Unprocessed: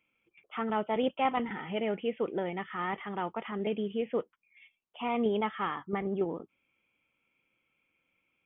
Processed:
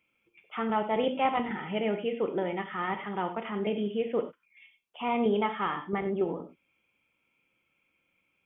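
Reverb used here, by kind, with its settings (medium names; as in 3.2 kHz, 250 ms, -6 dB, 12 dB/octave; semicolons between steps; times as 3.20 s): gated-style reverb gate 120 ms flat, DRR 6.5 dB; trim +1.5 dB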